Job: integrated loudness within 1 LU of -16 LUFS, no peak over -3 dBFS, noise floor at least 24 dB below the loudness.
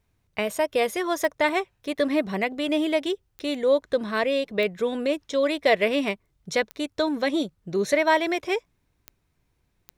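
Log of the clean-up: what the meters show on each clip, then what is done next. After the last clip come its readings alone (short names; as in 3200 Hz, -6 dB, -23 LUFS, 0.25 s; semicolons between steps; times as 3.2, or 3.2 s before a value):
clicks 6; loudness -25.0 LUFS; peak -8.5 dBFS; loudness target -16.0 LUFS
-> de-click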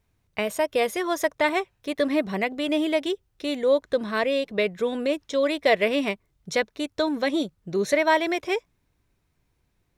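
clicks 0; loudness -25.0 LUFS; peak -8.5 dBFS; loudness target -16.0 LUFS
-> gain +9 dB; limiter -3 dBFS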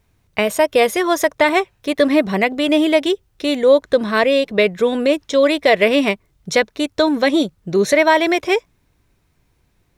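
loudness -16.5 LUFS; peak -3.0 dBFS; noise floor -63 dBFS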